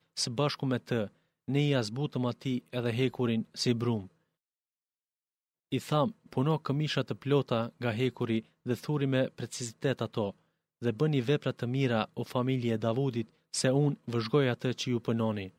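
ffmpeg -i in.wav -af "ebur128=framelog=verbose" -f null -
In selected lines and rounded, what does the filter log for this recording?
Integrated loudness:
  I:         -31.3 LUFS
  Threshold: -41.3 LUFS
Loudness range:
  LRA:         3.6 LU
  Threshold: -51.9 LUFS
  LRA low:   -34.0 LUFS
  LRA high:  -30.4 LUFS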